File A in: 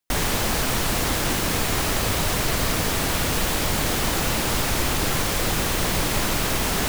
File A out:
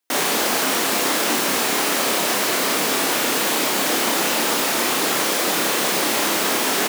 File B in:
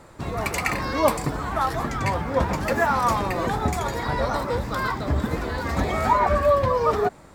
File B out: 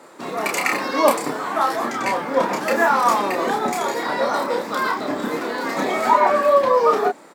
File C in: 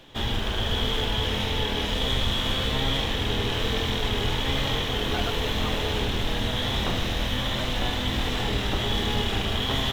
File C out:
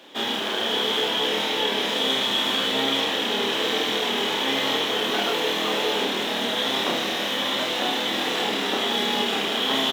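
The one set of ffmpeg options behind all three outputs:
-filter_complex "[0:a]highpass=f=240:w=0.5412,highpass=f=240:w=1.3066,asplit=2[a][b];[b]adelay=30,volume=-3.5dB[c];[a][c]amix=inputs=2:normalize=0,volume=3dB"

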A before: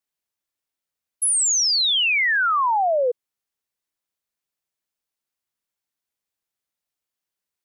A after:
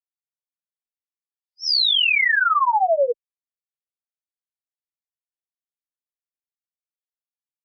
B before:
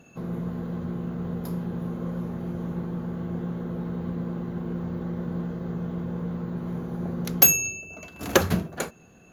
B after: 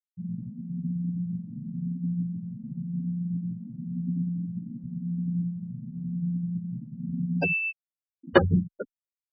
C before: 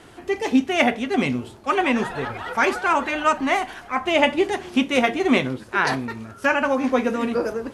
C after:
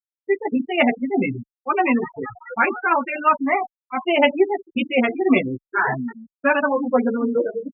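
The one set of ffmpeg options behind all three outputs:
-filter_complex "[0:a]afftfilt=real='re*gte(hypot(re,im),0.178)':imag='im*gte(hypot(re,im),0.178)':win_size=1024:overlap=0.75,aresample=11025,aresample=44100,asplit=2[a][b];[b]adelay=8.4,afreqshift=0.94[c];[a][c]amix=inputs=2:normalize=1,volume=4.5dB"

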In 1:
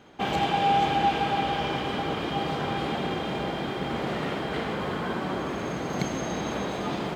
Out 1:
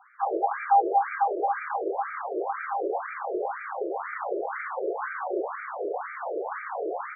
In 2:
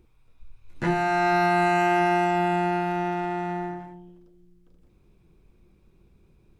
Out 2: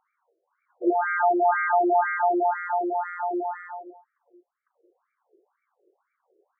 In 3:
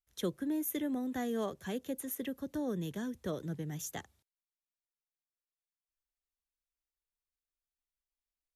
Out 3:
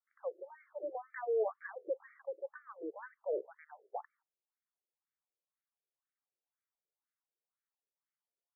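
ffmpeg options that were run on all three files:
-af "bandreject=f=630:w=12,acontrast=31,highpass=160,lowpass=4.1k,aemphasis=mode=reproduction:type=bsi,afftfilt=real='re*between(b*sr/1024,460*pow(1700/460,0.5+0.5*sin(2*PI*2*pts/sr))/1.41,460*pow(1700/460,0.5+0.5*sin(2*PI*2*pts/sr))*1.41)':imag='im*between(b*sr/1024,460*pow(1700/460,0.5+0.5*sin(2*PI*2*pts/sr))/1.41,460*pow(1700/460,0.5+0.5*sin(2*PI*2*pts/sr))*1.41)':win_size=1024:overlap=0.75"

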